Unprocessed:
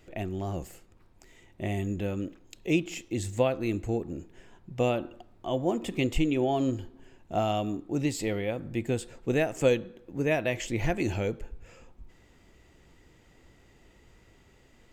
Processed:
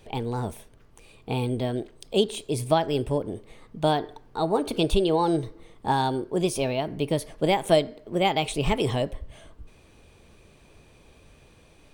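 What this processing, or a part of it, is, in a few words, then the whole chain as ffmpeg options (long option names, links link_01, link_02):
nightcore: -af "asetrate=55125,aresample=44100,volume=4dB"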